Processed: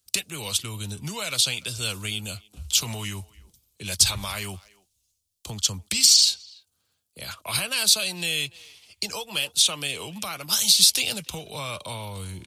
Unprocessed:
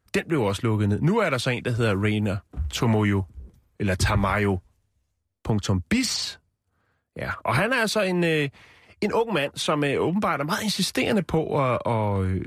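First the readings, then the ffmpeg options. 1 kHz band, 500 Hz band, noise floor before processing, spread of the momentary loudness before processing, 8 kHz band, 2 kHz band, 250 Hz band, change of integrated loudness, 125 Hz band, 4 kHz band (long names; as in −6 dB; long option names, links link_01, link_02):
−11.0 dB, −15.0 dB, −75 dBFS, 8 LU, +13.5 dB, −4.5 dB, −15.0 dB, +2.0 dB, −11.5 dB, +10.0 dB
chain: -filter_complex "[0:a]acrossover=split=210|510|6100[link_01][link_02][link_03][link_04];[link_02]acompressor=threshold=-41dB:ratio=6[link_05];[link_01][link_05][link_03][link_04]amix=inputs=4:normalize=0,asplit=2[link_06][link_07];[link_07]adelay=290,highpass=300,lowpass=3400,asoftclip=type=hard:threshold=-18dB,volume=-23dB[link_08];[link_06][link_08]amix=inputs=2:normalize=0,aexciter=amount=11.9:drive=5:freq=2800,volume=-10.5dB"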